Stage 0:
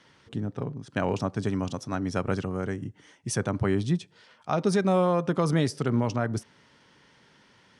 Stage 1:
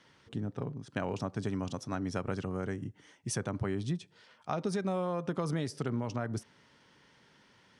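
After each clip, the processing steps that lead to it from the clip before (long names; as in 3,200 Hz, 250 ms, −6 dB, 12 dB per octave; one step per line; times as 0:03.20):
downward compressor, threshold −25 dBFS, peak gain reduction 6.5 dB
level −4 dB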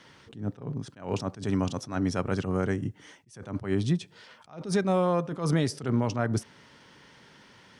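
level that may rise only so fast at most 150 dB per second
level +8.5 dB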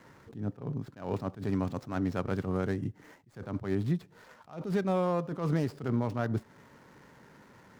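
running median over 15 samples
in parallel at +2 dB: downward compressor, threshold −35 dBFS, peak gain reduction 14 dB
on the sum: level −6 dB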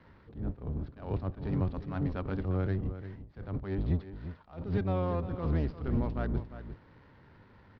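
sub-octave generator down 1 octave, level +4 dB
Butterworth low-pass 4,500 Hz 36 dB per octave
single-tap delay 350 ms −12 dB
level −4.5 dB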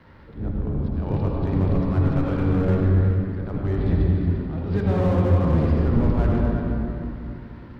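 hum removal 68.08 Hz, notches 37
convolution reverb RT60 2.6 s, pre-delay 76 ms, DRR −1.5 dB
slew-rate limiting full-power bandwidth 19 Hz
level +7.5 dB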